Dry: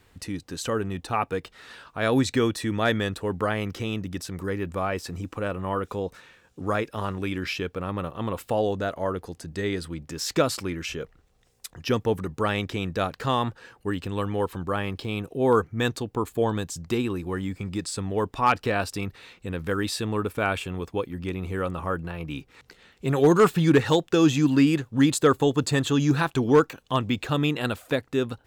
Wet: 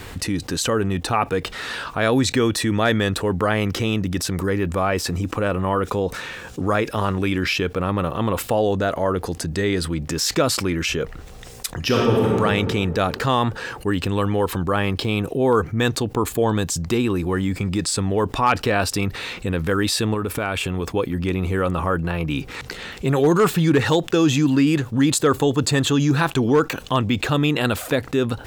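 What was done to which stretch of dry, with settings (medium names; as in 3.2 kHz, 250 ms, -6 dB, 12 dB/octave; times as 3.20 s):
11.79–12.38 s: reverb throw, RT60 1.7 s, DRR -3.5 dB
20.14–20.89 s: compression 4:1, threshold -31 dBFS
whole clip: level flattener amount 50%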